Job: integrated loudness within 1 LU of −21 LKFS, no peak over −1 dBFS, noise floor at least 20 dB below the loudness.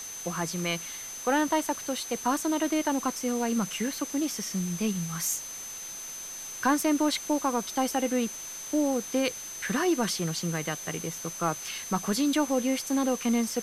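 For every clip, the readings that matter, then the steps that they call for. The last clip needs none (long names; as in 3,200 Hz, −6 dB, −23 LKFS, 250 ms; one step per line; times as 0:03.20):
interfering tone 6,200 Hz; level of the tone −38 dBFS; background noise floor −40 dBFS; target noise floor −49 dBFS; integrated loudness −29.0 LKFS; sample peak −11.5 dBFS; target loudness −21.0 LKFS
→ notch filter 6,200 Hz, Q 30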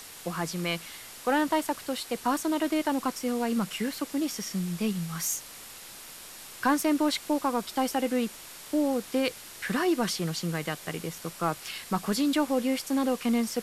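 interfering tone none found; background noise floor −46 dBFS; target noise floor −49 dBFS
→ broadband denoise 6 dB, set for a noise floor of −46 dBFS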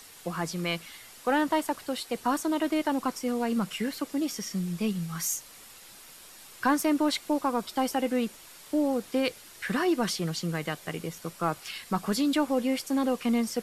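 background noise floor −50 dBFS; integrated loudness −29.5 LKFS; sample peak −12.0 dBFS; target loudness −21.0 LKFS
→ level +8.5 dB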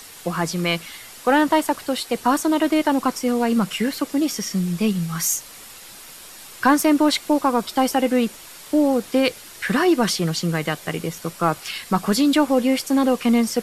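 integrated loudness −21.0 LKFS; sample peak −3.5 dBFS; background noise floor −41 dBFS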